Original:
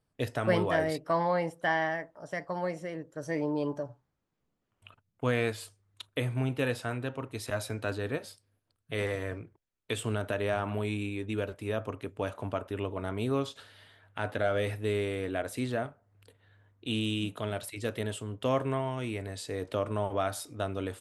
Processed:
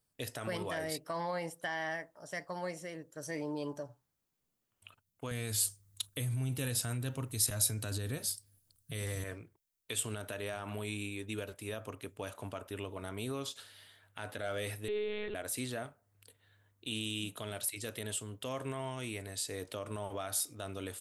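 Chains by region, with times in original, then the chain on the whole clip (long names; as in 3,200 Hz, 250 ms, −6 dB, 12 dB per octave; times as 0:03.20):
0:05.31–0:09.24: bass and treble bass +13 dB, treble +9 dB + notch filter 2,500 Hz, Q 29
0:14.88–0:15.35: comb filter 2.2 ms, depth 97% + one-pitch LPC vocoder at 8 kHz 210 Hz
whole clip: brickwall limiter −22.5 dBFS; first-order pre-emphasis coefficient 0.8; level +7 dB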